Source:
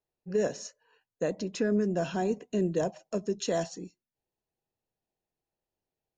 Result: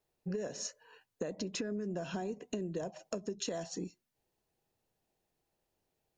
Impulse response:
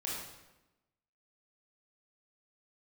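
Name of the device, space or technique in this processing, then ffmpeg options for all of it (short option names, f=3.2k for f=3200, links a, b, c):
serial compression, peaks first: -af "acompressor=threshold=-36dB:ratio=6,acompressor=threshold=-44dB:ratio=2.5,volume=7dB"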